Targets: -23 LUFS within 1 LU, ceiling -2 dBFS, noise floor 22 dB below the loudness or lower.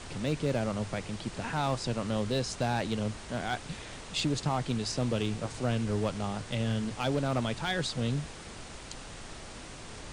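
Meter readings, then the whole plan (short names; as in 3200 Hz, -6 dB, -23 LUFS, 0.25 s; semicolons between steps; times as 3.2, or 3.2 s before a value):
clipped 0.5%; flat tops at -21.5 dBFS; noise floor -45 dBFS; noise floor target -55 dBFS; loudness -32.5 LUFS; peak -21.5 dBFS; loudness target -23.0 LUFS
-> clip repair -21.5 dBFS; noise print and reduce 10 dB; gain +9.5 dB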